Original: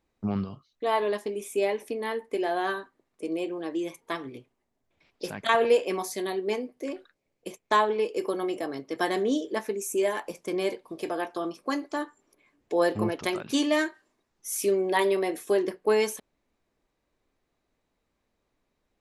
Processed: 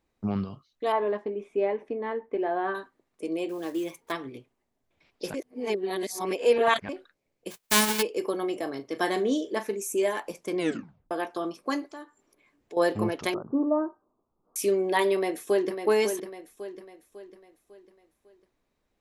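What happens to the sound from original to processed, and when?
0.92–2.75 s: low-pass 1.6 kHz
3.49–4.13 s: block-companded coder 5-bit
5.34–6.89 s: reverse
7.50–8.01 s: formants flattened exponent 0.1
8.55–9.80 s: doubling 39 ms -13 dB
10.57 s: tape stop 0.54 s
11.89–12.77 s: compression 1.5:1, threshold -59 dBFS
13.34–14.56 s: steep low-pass 1.3 kHz 72 dB/octave
15.15–15.85 s: echo throw 550 ms, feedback 45%, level -7.5 dB

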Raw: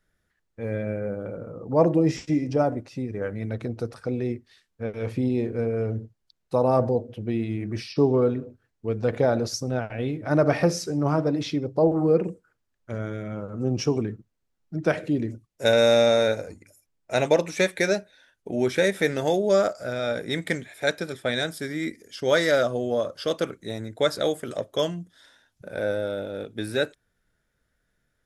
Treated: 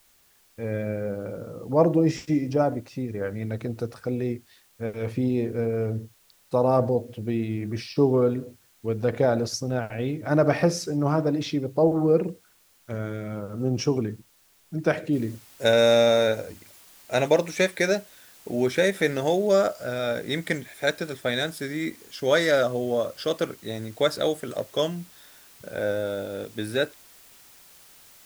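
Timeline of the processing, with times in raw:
15.13 s: noise floor step -61 dB -52 dB

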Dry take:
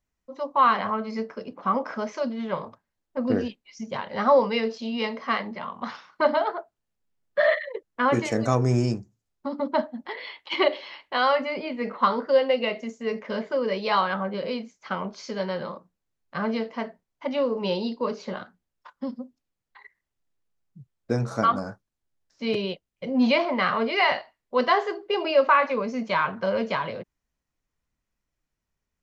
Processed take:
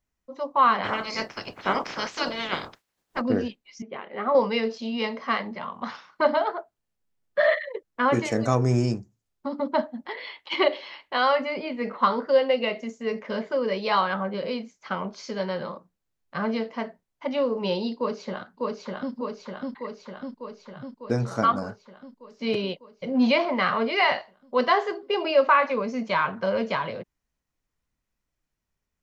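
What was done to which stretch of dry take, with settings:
0.83–3.20 s: spectral peaks clipped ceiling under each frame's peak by 28 dB
3.82–4.35 s: cabinet simulation 320–2600 Hz, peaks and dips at 380 Hz +6 dB, 570 Hz -6 dB, 940 Hz -10 dB, 1.6 kHz -7 dB
17.97–19.14 s: echo throw 600 ms, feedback 70%, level -1.5 dB

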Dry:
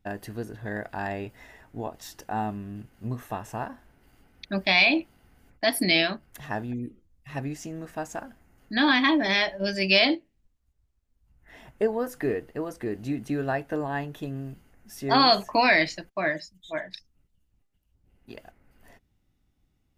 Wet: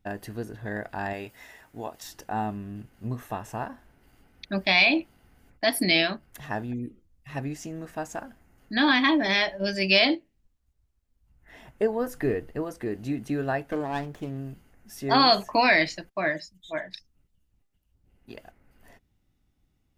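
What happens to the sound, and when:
1.13–2.03 s: tilt EQ +2 dB/octave
11.99–12.63 s: bass shelf 99 Hz +11 dB
13.71–14.38 s: sliding maximum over 9 samples

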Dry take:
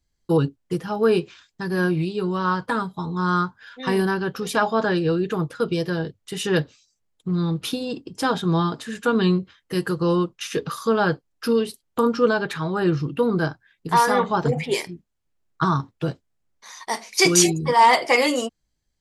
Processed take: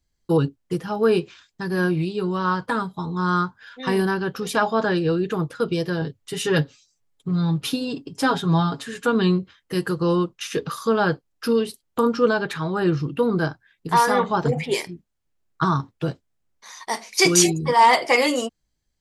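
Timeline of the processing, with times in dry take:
6.01–9.06 s: comb 7.2 ms

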